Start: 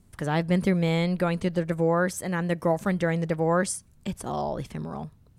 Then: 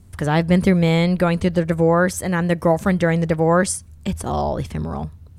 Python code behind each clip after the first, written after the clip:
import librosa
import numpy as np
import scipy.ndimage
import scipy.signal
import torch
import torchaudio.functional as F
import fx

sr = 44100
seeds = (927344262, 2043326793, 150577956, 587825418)

y = fx.peak_eq(x, sr, hz=80.0, db=15.0, octaves=0.45)
y = F.gain(torch.from_numpy(y), 7.0).numpy()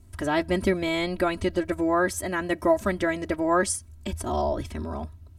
y = x + 0.86 * np.pad(x, (int(3.1 * sr / 1000.0), 0))[:len(x)]
y = F.gain(torch.from_numpy(y), -6.5).numpy()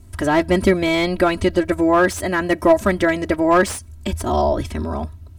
y = fx.slew_limit(x, sr, full_power_hz=130.0)
y = F.gain(torch.from_numpy(y), 8.0).numpy()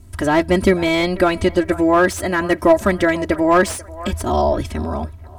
y = fx.echo_wet_bandpass(x, sr, ms=488, feedback_pct=33, hz=930.0, wet_db=-16.5)
y = F.gain(torch.from_numpy(y), 1.0).numpy()